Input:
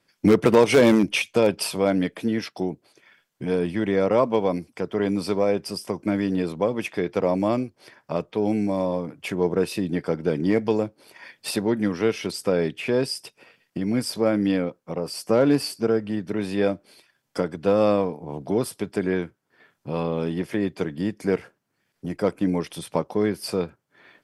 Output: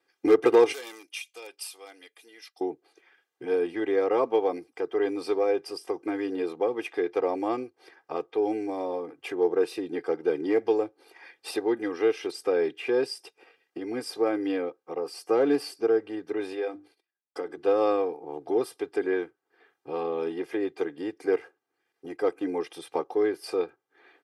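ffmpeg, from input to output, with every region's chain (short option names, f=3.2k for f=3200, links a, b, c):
-filter_complex "[0:a]asettb=1/sr,asplit=3[a][b][c];[a]atrim=end=0.724[d];[b]atrim=start=0.72:end=2.61,asetpts=PTS-STARTPTS,afade=t=in:d=0.004:c=qsin,afade=t=out:st=1.886:d=0.004:c=qsin,aderivative,bandreject=f=1.6k:w=19[e];[c]atrim=start=2.606[f];[d][e]acrossfade=d=0.004:c1=hsin:c2=qsin[g];[g][f]acrossfade=d=0.004:c1=qsin:c2=hsin,asettb=1/sr,asplit=3[h][i][j];[h]atrim=end=16.534[k];[i]atrim=start=16.53:end=17.63,asetpts=PTS-STARTPTS,afade=t=in:d=0.004:c=qsin,afade=t=out:st=1.096:d=0.004:c=qsin,bandreject=f=50:t=h:w=6,bandreject=f=100:t=h:w=6,bandreject=f=150:t=h:w=6,bandreject=f=200:t=h:w=6,bandreject=f=250:t=h:w=6,bandreject=f=300:t=h:w=6,bandreject=f=350:t=h:w=6,agate=range=-23dB:threshold=-50dB:ratio=16:release=100:detection=peak,acompressor=threshold=-28dB:ratio=2:attack=3.2:release=140:knee=1:detection=peak[l];[j]atrim=start=17.626[m];[k][l]acrossfade=d=0.004:c1=hsin:c2=qsin[n];[n][m]acrossfade=d=0.004:c1=qsin:c2=hsin,highpass=320,highshelf=f=3.3k:g=-9.5,aecho=1:1:2.5:0.91,volume=-4dB"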